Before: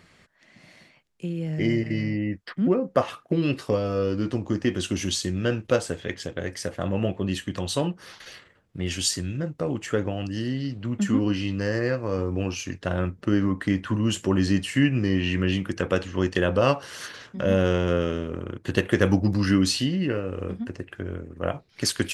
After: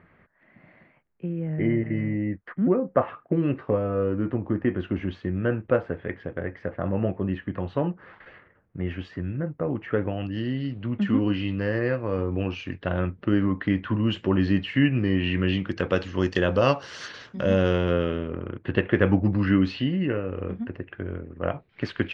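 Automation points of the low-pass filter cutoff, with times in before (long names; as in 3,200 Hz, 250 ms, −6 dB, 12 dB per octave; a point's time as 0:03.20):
low-pass filter 24 dB per octave
0:09.69 2,000 Hz
0:10.41 3,300 Hz
0:15.19 3,300 Hz
0:16.22 5,800 Hz
0:17.51 5,800 Hz
0:18.37 2,800 Hz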